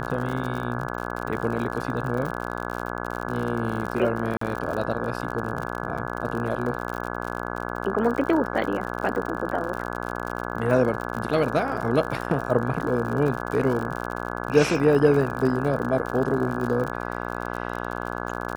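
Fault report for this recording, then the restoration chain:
mains buzz 60 Hz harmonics 28 −31 dBFS
surface crackle 56 per second −29 dBFS
0:04.37–0:04.41: drop-out 44 ms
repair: click removal
hum removal 60 Hz, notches 28
repair the gap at 0:04.37, 44 ms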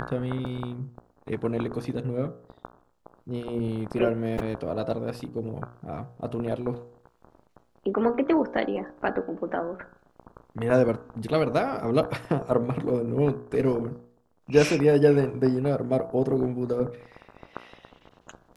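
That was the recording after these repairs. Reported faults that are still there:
none of them is left

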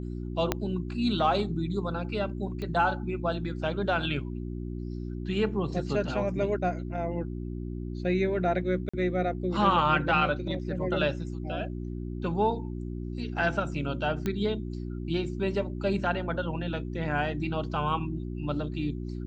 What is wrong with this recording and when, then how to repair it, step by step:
mains hum 60 Hz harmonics 6 −35 dBFS
0:00.52: click −10 dBFS
0:02.62: click −24 dBFS
0:08.89–0:08.94: drop-out 45 ms
0:14.26: click −17 dBFS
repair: click removal
hum removal 60 Hz, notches 6
repair the gap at 0:08.89, 45 ms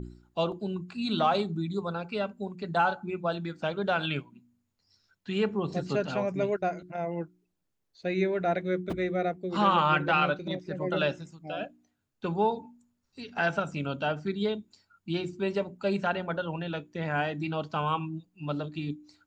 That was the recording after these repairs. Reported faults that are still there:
0:00.52: click
0:02.62: click

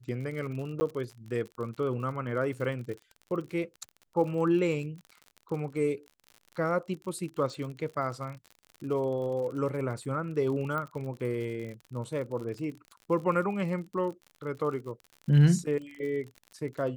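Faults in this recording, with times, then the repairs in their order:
surface crackle 54 per second −38 dBFS
0:00.80–0:00.81: drop-out 10 ms
0:10.78: click −22 dBFS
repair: click removal
repair the gap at 0:00.80, 10 ms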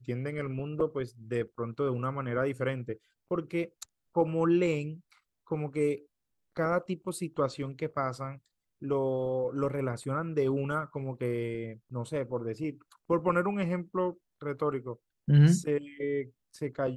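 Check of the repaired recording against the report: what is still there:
none of them is left

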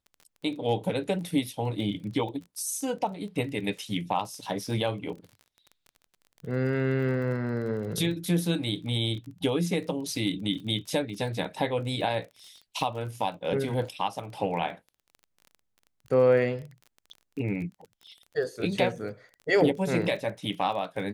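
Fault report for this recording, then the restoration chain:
surface crackle 26 per second −38 dBFS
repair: click removal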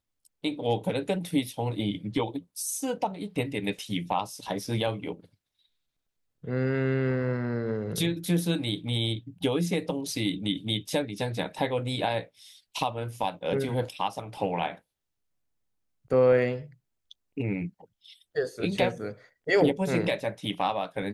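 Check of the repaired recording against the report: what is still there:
none of them is left

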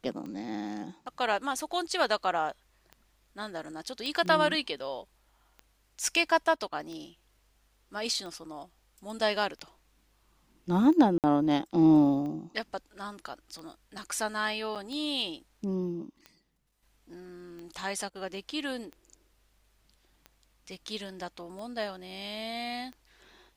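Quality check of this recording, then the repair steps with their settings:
scratch tick 45 rpm −30 dBFS
0:04.06: click −22 dBFS
0:11.18–0:11.24: drop-out 58 ms
0:14.75–0:14.76: drop-out 6.9 ms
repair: click removal
repair the gap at 0:11.18, 58 ms
repair the gap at 0:14.75, 6.9 ms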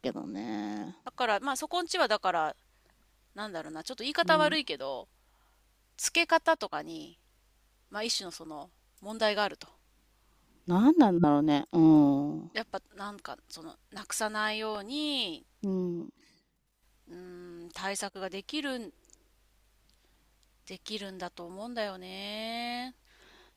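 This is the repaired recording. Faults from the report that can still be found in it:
none of them is left

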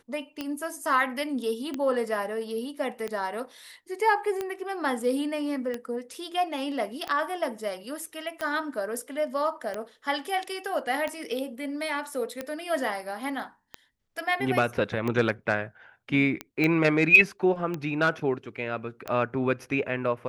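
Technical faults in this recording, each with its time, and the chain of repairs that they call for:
scratch tick 45 rpm −17 dBFS
0:16.64: click −13 dBFS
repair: click removal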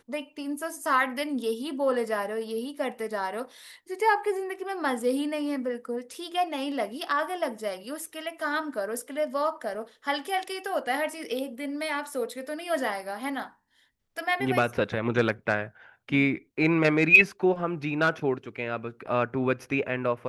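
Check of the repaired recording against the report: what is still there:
none of them is left

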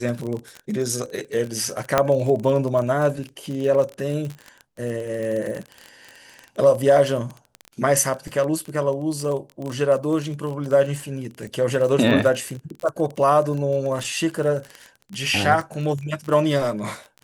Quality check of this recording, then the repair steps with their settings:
surface crackle 24 per second −26 dBFS
0:01.98: click −3 dBFS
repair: click removal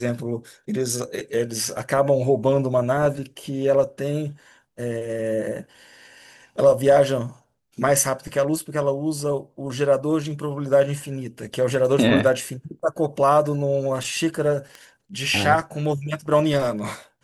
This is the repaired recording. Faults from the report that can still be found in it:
none of them is left

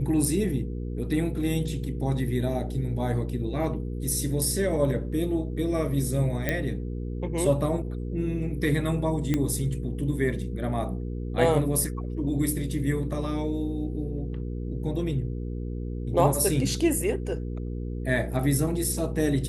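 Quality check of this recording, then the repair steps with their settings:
mains hum 60 Hz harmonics 8 −32 dBFS
0:06.49: click −11 dBFS
0:09.34: click −12 dBFS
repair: click removal
hum removal 60 Hz, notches 8

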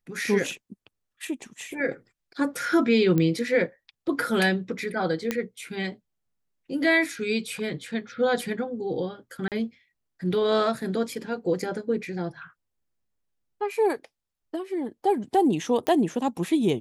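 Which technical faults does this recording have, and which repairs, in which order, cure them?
0:03.18: click −13 dBFS
0:05.31: click −11 dBFS
0:09.48–0:09.52: drop-out 38 ms
0:15.87: click −13 dBFS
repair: click removal
repair the gap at 0:09.48, 38 ms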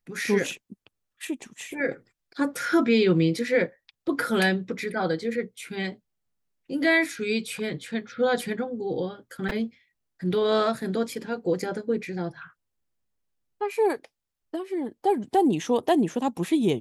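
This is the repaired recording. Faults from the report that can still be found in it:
0:05.31: click

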